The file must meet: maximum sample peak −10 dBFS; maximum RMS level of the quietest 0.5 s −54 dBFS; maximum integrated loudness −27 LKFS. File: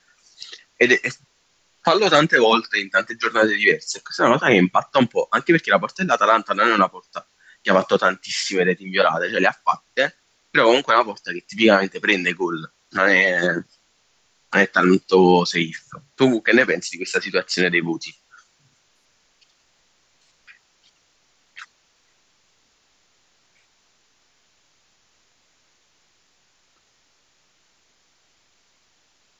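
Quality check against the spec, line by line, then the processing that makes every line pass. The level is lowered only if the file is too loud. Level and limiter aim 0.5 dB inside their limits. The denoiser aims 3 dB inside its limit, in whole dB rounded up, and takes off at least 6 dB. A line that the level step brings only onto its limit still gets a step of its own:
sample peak −2.5 dBFS: out of spec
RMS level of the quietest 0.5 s −63 dBFS: in spec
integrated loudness −18.5 LKFS: out of spec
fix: level −9 dB

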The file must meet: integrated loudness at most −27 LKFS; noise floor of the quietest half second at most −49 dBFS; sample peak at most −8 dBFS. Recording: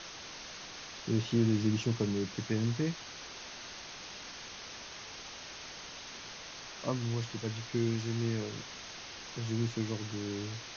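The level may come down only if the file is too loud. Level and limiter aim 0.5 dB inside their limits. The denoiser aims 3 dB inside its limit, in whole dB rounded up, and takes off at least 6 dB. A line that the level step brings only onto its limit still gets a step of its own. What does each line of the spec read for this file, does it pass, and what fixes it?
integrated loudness −36.0 LKFS: in spec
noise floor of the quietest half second −46 dBFS: out of spec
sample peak −17.0 dBFS: in spec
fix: broadband denoise 6 dB, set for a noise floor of −46 dBFS

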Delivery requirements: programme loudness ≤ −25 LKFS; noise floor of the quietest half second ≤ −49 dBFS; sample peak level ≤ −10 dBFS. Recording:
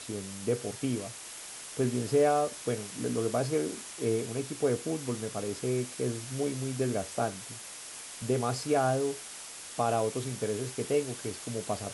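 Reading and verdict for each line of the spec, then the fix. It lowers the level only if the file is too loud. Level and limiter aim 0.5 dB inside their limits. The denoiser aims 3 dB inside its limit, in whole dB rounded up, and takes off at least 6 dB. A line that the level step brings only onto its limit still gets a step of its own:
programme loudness −32.0 LKFS: in spec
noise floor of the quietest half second −44 dBFS: out of spec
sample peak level −15.5 dBFS: in spec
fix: broadband denoise 8 dB, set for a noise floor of −44 dBFS

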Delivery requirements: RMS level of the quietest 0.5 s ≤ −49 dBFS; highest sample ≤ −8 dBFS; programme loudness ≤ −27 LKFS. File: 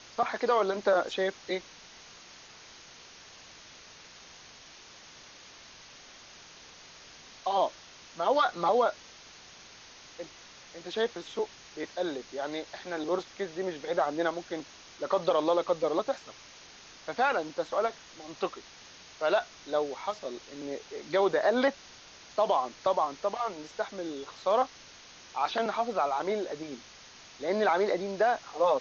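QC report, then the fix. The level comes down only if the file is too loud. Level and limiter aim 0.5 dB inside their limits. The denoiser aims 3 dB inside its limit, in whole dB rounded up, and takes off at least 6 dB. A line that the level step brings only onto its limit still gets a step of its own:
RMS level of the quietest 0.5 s −52 dBFS: in spec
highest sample −13.5 dBFS: in spec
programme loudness −30.5 LKFS: in spec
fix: no processing needed

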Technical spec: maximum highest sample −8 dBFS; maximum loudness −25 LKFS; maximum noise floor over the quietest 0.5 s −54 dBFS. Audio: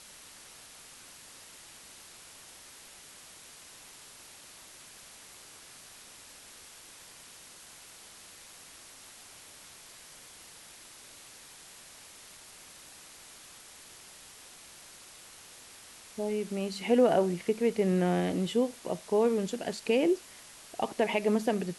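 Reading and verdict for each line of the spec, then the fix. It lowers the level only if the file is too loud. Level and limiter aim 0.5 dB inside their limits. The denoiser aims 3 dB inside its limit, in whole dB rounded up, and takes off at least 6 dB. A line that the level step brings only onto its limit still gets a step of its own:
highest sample −13.5 dBFS: in spec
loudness −29.0 LKFS: in spec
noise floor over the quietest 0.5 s −52 dBFS: out of spec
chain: broadband denoise 6 dB, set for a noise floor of −52 dBFS

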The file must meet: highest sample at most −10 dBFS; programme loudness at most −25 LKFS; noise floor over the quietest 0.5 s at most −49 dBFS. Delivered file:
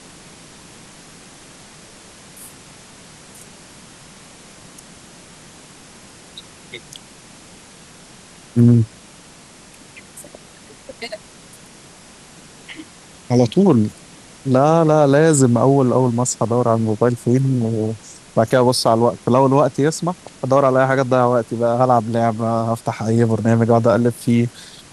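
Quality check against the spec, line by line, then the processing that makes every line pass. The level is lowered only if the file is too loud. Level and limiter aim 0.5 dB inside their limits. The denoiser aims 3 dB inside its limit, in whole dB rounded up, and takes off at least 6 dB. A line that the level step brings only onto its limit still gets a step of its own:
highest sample −2.5 dBFS: out of spec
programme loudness −16.5 LKFS: out of spec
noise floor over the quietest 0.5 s −43 dBFS: out of spec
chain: level −9 dB

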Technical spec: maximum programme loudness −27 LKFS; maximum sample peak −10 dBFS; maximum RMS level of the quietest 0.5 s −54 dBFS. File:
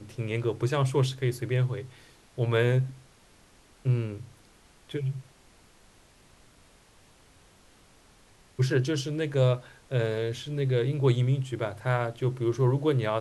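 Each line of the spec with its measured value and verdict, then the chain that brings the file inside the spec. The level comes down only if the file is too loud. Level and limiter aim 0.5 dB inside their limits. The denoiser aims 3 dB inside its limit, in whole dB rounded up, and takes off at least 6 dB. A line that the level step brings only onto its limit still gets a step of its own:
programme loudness −28.0 LKFS: in spec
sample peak −11.0 dBFS: in spec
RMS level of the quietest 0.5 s −58 dBFS: in spec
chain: no processing needed

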